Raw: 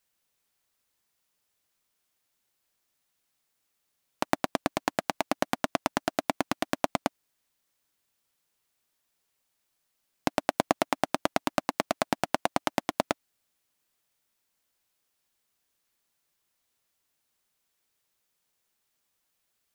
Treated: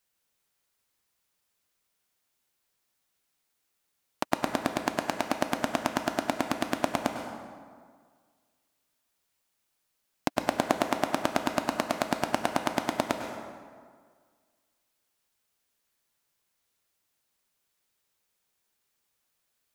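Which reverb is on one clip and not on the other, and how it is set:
dense smooth reverb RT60 1.8 s, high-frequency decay 0.6×, pre-delay 90 ms, DRR 4.5 dB
level −1 dB

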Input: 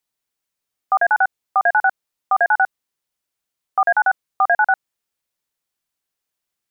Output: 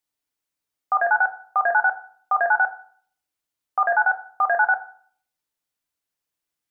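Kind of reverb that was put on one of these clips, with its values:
feedback delay network reverb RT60 0.52 s, low-frequency decay 1.25×, high-frequency decay 0.5×, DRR 6 dB
level −4 dB

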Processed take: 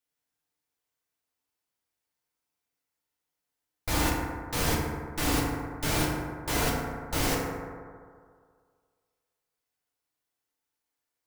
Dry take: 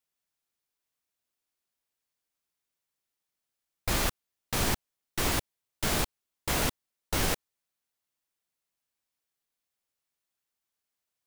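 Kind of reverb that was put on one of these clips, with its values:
feedback delay network reverb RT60 2 s, low-frequency decay 0.85×, high-frequency decay 0.3×, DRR −4.5 dB
level −3.5 dB

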